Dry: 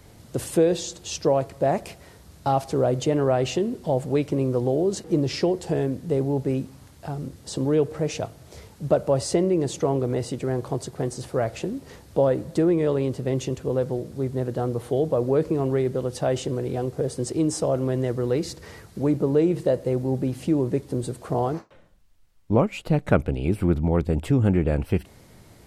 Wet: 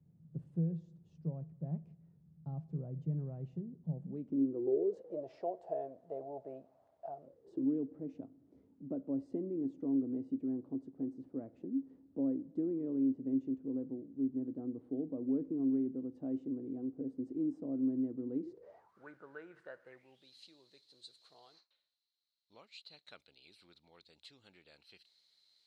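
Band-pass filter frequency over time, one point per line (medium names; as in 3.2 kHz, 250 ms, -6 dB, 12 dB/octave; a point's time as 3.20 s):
band-pass filter, Q 12
3.90 s 160 Hz
5.26 s 660 Hz
7.24 s 660 Hz
7.66 s 270 Hz
18.40 s 270 Hz
19.05 s 1.5 kHz
19.86 s 1.5 kHz
20.28 s 4.1 kHz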